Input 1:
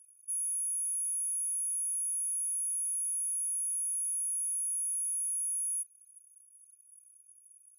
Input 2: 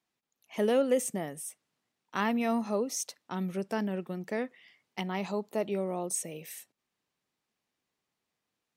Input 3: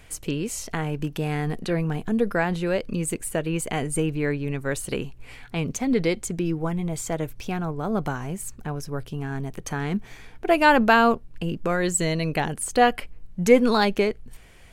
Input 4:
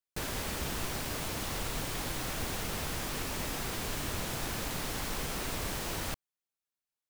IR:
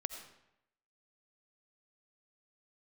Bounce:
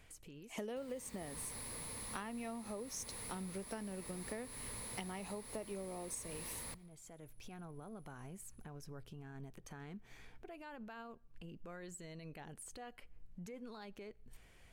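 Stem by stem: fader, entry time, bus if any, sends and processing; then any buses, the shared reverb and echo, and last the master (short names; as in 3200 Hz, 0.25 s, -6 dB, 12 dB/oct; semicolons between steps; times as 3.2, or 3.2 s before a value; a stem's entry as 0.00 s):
-15.5 dB, 0.90 s, no send, dry
-3.5 dB, 0.00 s, no send, dry
-13.0 dB, 0.00 s, send -21 dB, compressor 4:1, threshold -33 dBFS, peak gain reduction 19 dB; limiter -29.5 dBFS, peak gain reduction 9.5 dB; auto duck -15 dB, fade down 1.35 s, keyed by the second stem
-15.5 dB, 0.60 s, send -13.5 dB, ripple EQ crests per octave 0.95, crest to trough 8 dB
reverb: on, RT60 0.80 s, pre-delay 45 ms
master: compressor 20:1, threshold -40 dBFS, peak gain reduction 16 dB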